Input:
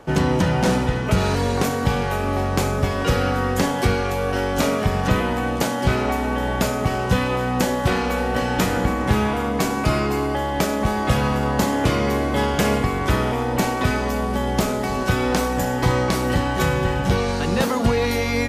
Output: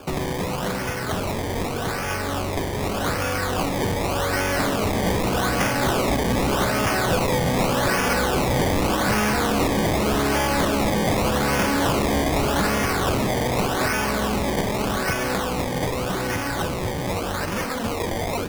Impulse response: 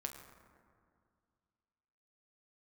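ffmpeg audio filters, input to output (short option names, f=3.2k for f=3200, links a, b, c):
-filter_complex "[0:a]equalizer=f=5.1k:w=0.37:g=14.5,asplit=2[a][b];[1:a]atrim=start_sample=2205,adelay=10[c];[b][c]afir=irnorm=-1:irlink=0,volume=-9dB[d];[a][d]amix=inputs=2:normalize=0,acrossover=split=220|5100[e][f][g];[e]acompressor=threshold=-33dB:ratio=4[h];[f]acompressor=threshold=-27dB:ratio=4[i];[g]acompressor=threshold=-35dB:ratio=4[j];[h][i][j]amix=inputs=3:normalize=0,acrusher=samples=22:mix=1:aa=0.000001:lfo=1:lforange=22:lforate=0.84,dynaudnorm=f=500:g=17:m=11.5dB,asoftclip=type=tanh:threshold=-17dB,volume=1dB"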